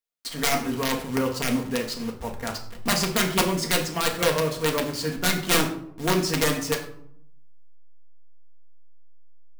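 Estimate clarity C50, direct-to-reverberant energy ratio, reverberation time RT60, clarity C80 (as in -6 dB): 9.5 dB, 1.0 dB, 0.70 s, 12.5 dB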